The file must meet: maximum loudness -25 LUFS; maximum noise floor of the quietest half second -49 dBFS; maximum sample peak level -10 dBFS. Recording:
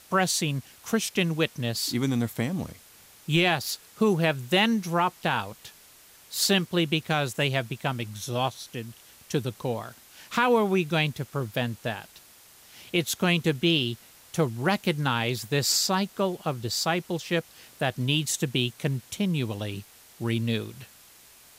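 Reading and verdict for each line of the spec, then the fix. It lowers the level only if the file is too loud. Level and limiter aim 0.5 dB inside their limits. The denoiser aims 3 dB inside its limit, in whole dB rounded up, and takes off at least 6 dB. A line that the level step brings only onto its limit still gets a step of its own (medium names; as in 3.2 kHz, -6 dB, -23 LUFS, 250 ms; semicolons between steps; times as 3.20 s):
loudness -26.5 LUFS: pass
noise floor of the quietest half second -53 dBFS: pass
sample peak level -11.0 dBFS: pass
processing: none needed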